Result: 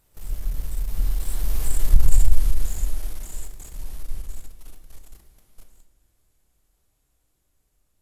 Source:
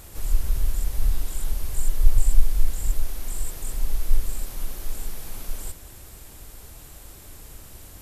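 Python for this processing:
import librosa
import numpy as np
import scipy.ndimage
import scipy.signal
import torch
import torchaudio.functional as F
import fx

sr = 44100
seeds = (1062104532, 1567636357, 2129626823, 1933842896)

y = fx.doppler_pass(x, sr, speed_mps=22, closest_m=8.8, pass_at_s=1.93)
y = fx.leveller(y, sr, passes=2)
y = fx.room_shoebox(y, sr, seeds[0], volume_m3=290.0, walls='mixed', distance_m=0.5)
y = y * 10.0 ** (-2.5 / 20.0)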